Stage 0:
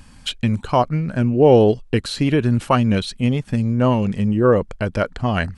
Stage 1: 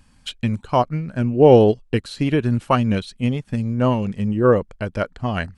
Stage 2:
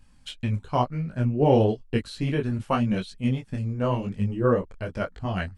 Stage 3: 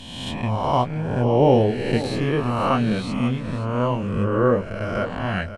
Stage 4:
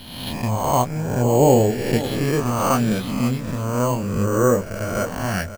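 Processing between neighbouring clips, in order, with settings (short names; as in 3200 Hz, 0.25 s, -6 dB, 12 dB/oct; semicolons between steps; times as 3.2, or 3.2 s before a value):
upward expander 1.5:1, over -31 dBFS; gain +1.5 dB
low shelf 79 Hz +6.5 dB; detuned doubles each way 33 cents; gain -2.5 dB
spectral swells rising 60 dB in 1.30 s; echo 0.529 s -13.5 dB; gain +1 dB
in parallel at -6 dB: crossover distortion -39.5 dBFS; on the sum: careless resampling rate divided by 6×, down none, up hold; gain -2 dB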